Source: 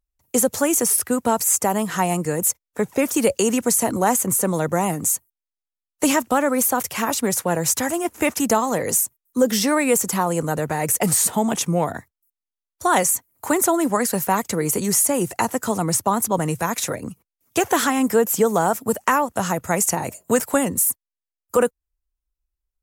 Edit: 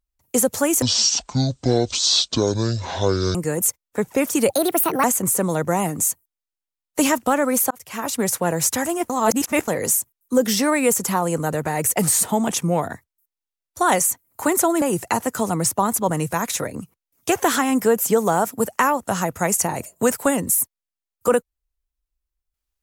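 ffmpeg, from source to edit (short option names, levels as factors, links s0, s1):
-filter_complex "[0:a]asplit=9[s0][s1][s2][s3][s4][s5][s6][s7][s8];[s0]atrim=end=0.824[s9];[s1]atrim=start=0.82:end=2.16,asetpts=PTS-STARTPTS,asetrate=23373,aresample=44100,atrim=end_sample=111498,asetpts=PTS-STARTPTS[s10];[s2]atrim=start=2.156:end=3.314[s11];[s3]atrim=start=3.31:end=4.08,asetpts=PTS-STARTPTS,asetrate=63063,aresample=44100,atrim=end_sample=23746,asetpts=PTS-STARTPTS[s12];[s4]atrim=start=4.076:end=6.75,asetpts=PTS-STARTPTS,afade=t=out:st=2.67:d=0.004:c=hsin[s13];[s5]atrim=start=6.75:end=8.142,asetpts=PTS-STARTPTS,afade=t=in:d=0.53[s14];[s6]atrim=start=8.138:end=8.722,asetpts=PTS-STARTPTS,areverse[s15];[s7]atrim=start=8.718:end=13.862[s16];[s8]atrim=start=15.098[s17];[s9][s10]acrossfade=d=0.004:c1=hsin:c2=hsin[s18];[s18][s11]acrossfade=d=0.004:c1=hsin:c2=hsin[s19];[s19][s12]acrossfade=d=0.004:c1=hsin:c2=hsin[s20];[s13][s14]concat=n=2:v=0:a=1[s21];[s20][s21]acrossfade=d=0.004:c1=hsin:c2=hsin[s22];[s22][s15]acrossfade=d=0.004:c1=hsin:c2=hsin[s23];[s23][s16]acrossfade=d=0.004:c1=hsin:c2=hsin[s24];[s24][s17]acrossfade=d=0.004:c1=hsin:c2=hsin"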